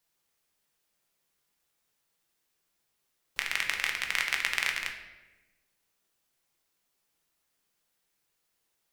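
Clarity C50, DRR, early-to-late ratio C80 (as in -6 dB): 6.5 dB, 1.5 dB, 9.5 dB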